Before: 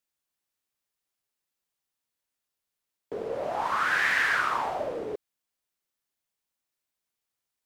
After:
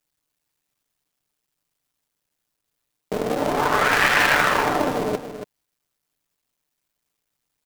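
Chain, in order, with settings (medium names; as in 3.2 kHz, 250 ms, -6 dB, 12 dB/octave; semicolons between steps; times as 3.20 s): cycle switcher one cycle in 2, muted; bass shelf 320 Hz +7 dB; comb 6.8 ms, depth 33%; on a send: delay 280 ms -10 dB; on the sum: trim +9 dB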